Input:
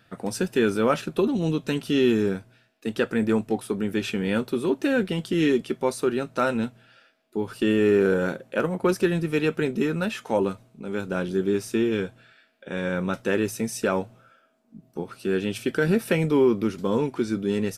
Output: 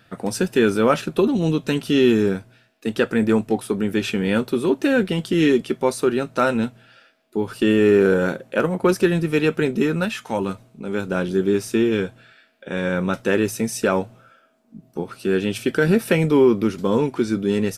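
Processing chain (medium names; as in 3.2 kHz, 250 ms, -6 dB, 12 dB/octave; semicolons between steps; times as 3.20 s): 10.05–10.49 s: peaking EQ 450 Hz -7.5 dB 1.5 oct; trim +4.5 dB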